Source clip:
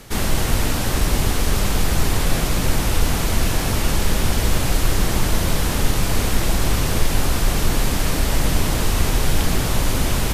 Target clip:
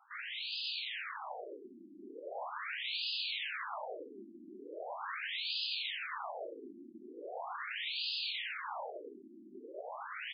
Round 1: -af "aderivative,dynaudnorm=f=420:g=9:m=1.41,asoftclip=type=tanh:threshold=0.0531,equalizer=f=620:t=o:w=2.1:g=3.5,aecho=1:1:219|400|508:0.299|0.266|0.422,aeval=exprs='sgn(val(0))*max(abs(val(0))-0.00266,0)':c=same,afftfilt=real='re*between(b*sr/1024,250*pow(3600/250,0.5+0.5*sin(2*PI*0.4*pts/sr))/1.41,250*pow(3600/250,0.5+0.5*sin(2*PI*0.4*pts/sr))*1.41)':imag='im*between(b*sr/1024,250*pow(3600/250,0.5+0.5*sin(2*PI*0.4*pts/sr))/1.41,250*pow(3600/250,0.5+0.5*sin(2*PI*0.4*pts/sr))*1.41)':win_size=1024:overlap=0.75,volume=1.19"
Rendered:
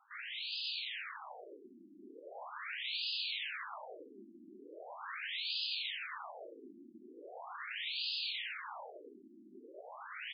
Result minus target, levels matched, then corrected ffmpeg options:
500 Hz band -6.0 dB
-af "aderivative,dynaudnorm=f=420:g=9:m=1.41,asoftclip=type=tanh:threshold=0.0531,equalizer=f=620:t=o:w=2.1:g=10.5,aecho=1:1:219|400|508:0.299|0.266|0.422,aeval=exprs='sgn(val(0))*max(abs(val(0))-0.00266,0)':c=same,afftfilt=real='re*between(b*sr/1024,250*pow(3600/250,0.5+0.5*sin(2*PI*0.4*pts/sr))/1.41,250*pow(3600/250,0.5+0.5*sin(2*PI*0.4*pts/sr))*1.41)':imag='im*between(b*sr/1024,250*pow(3600/250,0.5+0.5*sin(2*PI*0.4*pts/sr))/1.41,250*pow(3600/250,0.5+0.5*sin(2*PI*0.4*pts/sr))*1.41)':win_size=1024:overlap=0.75,volume=1.19"

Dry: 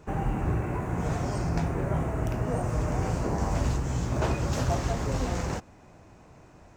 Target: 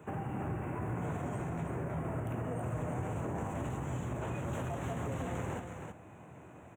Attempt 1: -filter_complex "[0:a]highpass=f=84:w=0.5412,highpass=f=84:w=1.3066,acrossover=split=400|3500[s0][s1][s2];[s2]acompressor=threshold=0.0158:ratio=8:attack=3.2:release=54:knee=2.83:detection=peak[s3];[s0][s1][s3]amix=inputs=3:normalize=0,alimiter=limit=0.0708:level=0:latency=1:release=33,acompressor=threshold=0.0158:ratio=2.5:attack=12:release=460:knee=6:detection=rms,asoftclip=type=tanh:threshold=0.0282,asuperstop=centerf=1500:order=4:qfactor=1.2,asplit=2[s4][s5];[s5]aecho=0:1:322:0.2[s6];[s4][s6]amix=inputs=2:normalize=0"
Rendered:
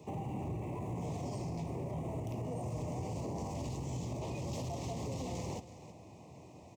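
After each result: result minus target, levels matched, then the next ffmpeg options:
saturation: distortion +12 dB; 2 kHz band -8.0 dB; echo-to-direct -8 dB
-filter_complex "[0:a]highpass=f=84:w=0.5412,highpass=f=84:w=1.3066,acrossover=split=400|3500[s0][s1][s2];[s2]acompressor=threshold=0.0158:ratio=8:attack=3.2:release=54:knee=2.83:detection=peak[s3];[s0][s1][s3]amix=inputs=3:normalize=0,alimiter=limit=0.0708:level=0:latency=1:release=33,acompressor=threshold=0.0158:ratio=2.5:attack=12:release=460:knee=6:detection=rms,asoftclip=type=tanh:threshold=0.0631,asuperstop=centerf=1500:order=4:qfactor=1.2,asplit=2[s4][s5];[s5]aecho=0:1:322:0.2[s6];[s4][s6]amix=inputs=2:normalize=0"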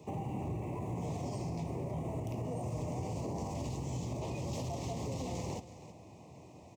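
2 kHz band -8.0 dB; echo-to-direct -8 dB
-filter_complex "[0:a]highpass=f=84:w=0.5412,highpass=f=84:w=1.3066,acrossover=split=400|3500[s0][s1][s2];[s2]acompressor=threshold=0.0158:ratio=8:attack=3.2:release=54:knee=2.83:detection=peak[s3];[s0][s1][s3]amix=inputs=3:normalize=0,alimiter=limit=0.0708:level=0:latency=1:release=33,acompressor=threshold=0.0158:ratio=2.5:attack=12:release=460:knee=6:detection=rms,asoftclip=type=tanh:threshold=0.0631,asuperstop=centerf=4900:order=4:qfactor=1.2,asplit=2[s4][s5];[s5]aecho=0:1:322:0.2[s6];[s4][s6]amix=inputs=2:normalize=0"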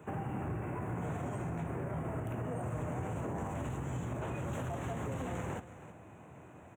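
echo-to-direct -8 dB
-filter_complex "[0:a]highpass=f=84:w=0.5412,highpass=f=84:w=1.3066,acrossover=split=400|3500[s0][s1][s2];[s2]acompressor=threshold=0.0158:ratio=8:attack=3.2:release=54:knee=2.83:detection=peak[s3];[s0][s1][s3]amix=inputs=3:normalize=0,alimiter=limit=0.0708:level=0:latency=1:release=33,acompressor=threshold=0.0158:ratio=2.5:attack=12:release=460:knee=6:detection=rms,asoftclip=type=tanh:threshold=0.0631,asuperstop=centerf=4900:order=4:qfactor=1.2,asplit=2[s4][s5];[s5]aecho=0:1:322:0.501[s6];[s4][s6]amix=inputs=2:normalize=0"

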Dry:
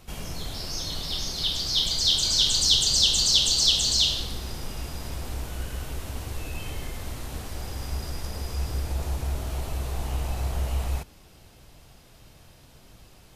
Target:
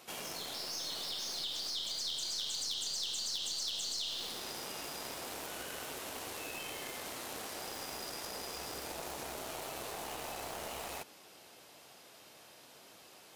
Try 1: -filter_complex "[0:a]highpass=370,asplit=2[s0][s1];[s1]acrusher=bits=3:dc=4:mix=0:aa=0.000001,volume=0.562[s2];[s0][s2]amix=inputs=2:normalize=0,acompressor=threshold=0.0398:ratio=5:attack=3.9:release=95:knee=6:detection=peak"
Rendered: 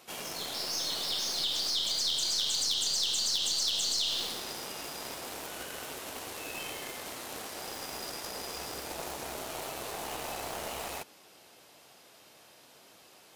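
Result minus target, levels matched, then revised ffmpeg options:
compression: peak gain reduction -7.5 dB
-filter_complex "[0:a]highpass=370,asplit=2[s0][s1];[s1]acrusher=bits=3:dc=4:mix=0:aa=0.000001,volume=0.562[s2];[s0][s2]amix=inputs=2:normalize=0,acompressor=threshold=0.0133:ratio=5:attack=3.9:release=95:knee=6:detection=peak"

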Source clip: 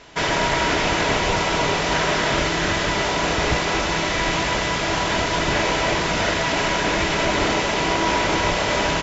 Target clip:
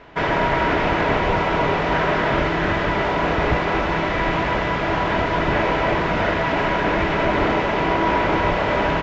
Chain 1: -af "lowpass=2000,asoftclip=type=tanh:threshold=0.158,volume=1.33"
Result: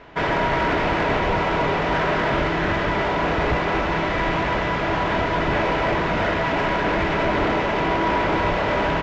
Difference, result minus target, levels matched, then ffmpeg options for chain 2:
saturation: distortion +15 dB
-af "lowpass=2000,asoftclip=type=tanh:threshold=0.473,volume=1.33"

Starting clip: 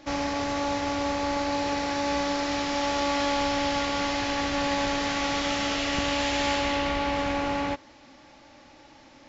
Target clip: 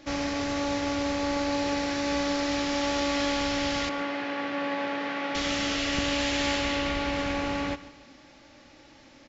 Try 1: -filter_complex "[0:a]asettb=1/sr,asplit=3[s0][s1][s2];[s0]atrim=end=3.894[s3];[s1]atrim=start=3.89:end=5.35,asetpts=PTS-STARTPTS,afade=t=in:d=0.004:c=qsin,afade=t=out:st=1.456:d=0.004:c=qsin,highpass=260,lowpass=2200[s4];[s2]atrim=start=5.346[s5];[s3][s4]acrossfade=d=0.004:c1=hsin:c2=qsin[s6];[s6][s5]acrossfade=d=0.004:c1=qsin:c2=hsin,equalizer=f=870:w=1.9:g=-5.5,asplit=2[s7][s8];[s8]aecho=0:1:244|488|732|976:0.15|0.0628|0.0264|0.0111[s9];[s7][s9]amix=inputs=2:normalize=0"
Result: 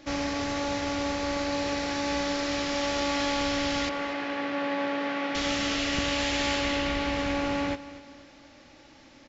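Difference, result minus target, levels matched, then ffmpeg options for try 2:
echo 100 ms late
-filter_complex "[0:a]asettb=1/sr,asplit=3[s0][s1][s2];[s0]atrim=end=3.894[s3];[s1]atrim=start=3.89:end=5.35,asetpts=PTS-STARTPTS,afade=t=in:d=0.004:c=qsin,afade=t=out:st=1.456:d=0.004:c=qsin,highpass=260,lowpass=2200[s4];[s2]atrim=start=5.346[s5];[s3][s4]acrossfade=d=0.004:c1=hsin:c2=qsin[s6];[s6][s5]acrossfade=d=0.004:c1=qsin:c2=hsin,equalizer=f=870:w=1.9:g=-5.5,asplit=2[s7][s8];[s8]aecho=0:1:144|288|432|576:0.15|0.0628|0.0264|0.0111[s9];[s7][s9]amix=inputs=2:normalize=0"

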